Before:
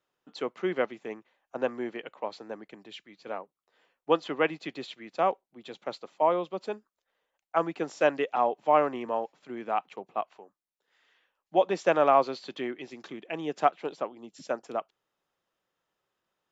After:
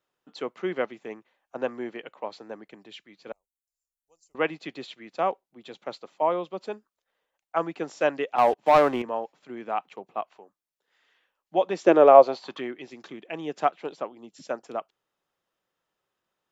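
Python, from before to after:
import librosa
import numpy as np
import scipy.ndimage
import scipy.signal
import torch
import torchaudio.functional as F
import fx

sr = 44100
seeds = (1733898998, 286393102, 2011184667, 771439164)

y = fx.cheby2_bandstop(x, sr, low_hz=110.0, high_hz=3600.0, order=4, stop_db=40, at=(3.32, 4.35))
y = fx.leveller(y, sr, passes=2, at=(8.38, 9.02))
y = fx.peak_eq(y, sr, hz=fx.line((11.82, 290.0), (12.59, 1200.0)), db=14.5, octaves=0.89, at=(11.82, 12.59), fade=0.02)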